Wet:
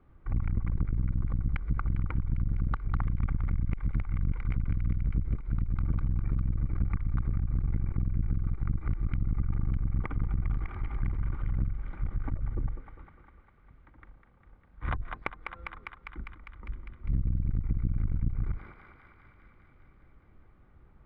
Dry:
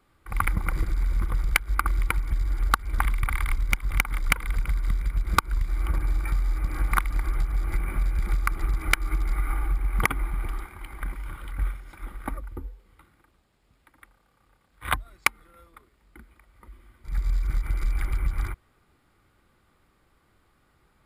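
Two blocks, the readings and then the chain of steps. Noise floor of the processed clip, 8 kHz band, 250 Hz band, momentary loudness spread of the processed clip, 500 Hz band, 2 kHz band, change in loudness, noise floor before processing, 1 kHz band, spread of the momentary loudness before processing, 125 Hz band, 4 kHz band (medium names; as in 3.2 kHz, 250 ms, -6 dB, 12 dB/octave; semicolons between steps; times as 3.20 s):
-59 dBFS, under -40 dB, +3.5 dB, 10 LU, -6.5 dB, -16.0 dB, -4.5 dB, -66 dBFS, -13.5 dB, 11 LU, +0.5 dB, under -20 dB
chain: octave divider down 1 oct, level -3 dB; distance through air 450 m; thinning echo 201 ms, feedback 78%, high-pass 610 Hz, level -8.5 dB; compression 5:1, threshold -30 dBFS, peak gain reduction 13 dB; tilt EQ -2 dB/octave; transformer saturation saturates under 150 Hz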